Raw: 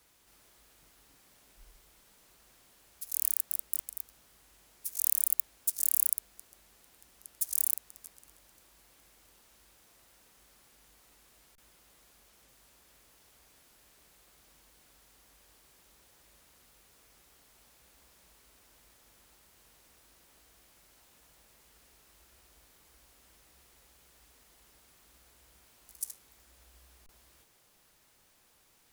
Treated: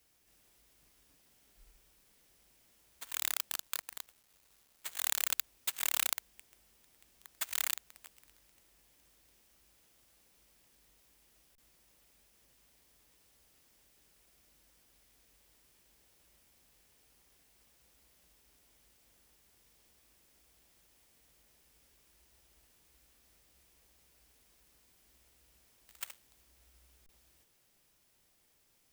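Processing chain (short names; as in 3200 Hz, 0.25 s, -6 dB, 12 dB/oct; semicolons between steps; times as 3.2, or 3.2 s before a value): FFT order left unsorted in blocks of 32 samples; 3.55–5.02 companded quantiser 4-bit; gain -5 dB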